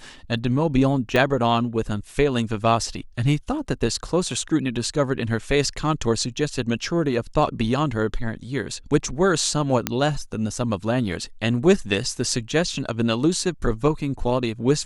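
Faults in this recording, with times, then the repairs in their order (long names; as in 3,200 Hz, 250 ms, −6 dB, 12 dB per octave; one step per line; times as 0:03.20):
0:01.16: click −8 dBFS
0:09.87: click −4 dBFS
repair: click removal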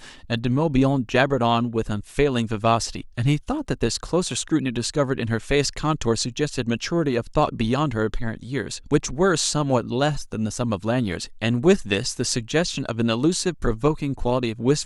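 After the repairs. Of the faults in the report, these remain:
0:01.16: click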